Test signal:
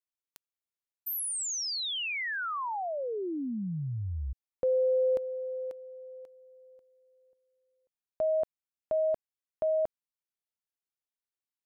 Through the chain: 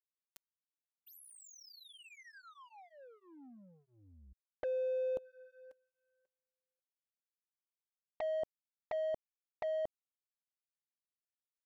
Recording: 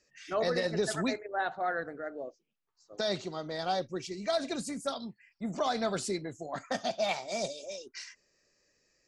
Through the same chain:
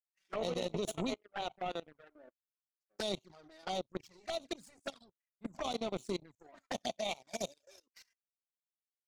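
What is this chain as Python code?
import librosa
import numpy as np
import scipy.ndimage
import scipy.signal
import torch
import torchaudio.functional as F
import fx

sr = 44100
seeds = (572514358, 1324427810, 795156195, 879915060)

y = fx.power_curve(x, sr, exponent=2.0)
y = fx.level_steps(y, sr, step_db=21)
y = fx.env_flanger(y, sr, rest_ms=5.4, full_db=-42.0)
y = y * 10.0 ** (8.5 / 20.0)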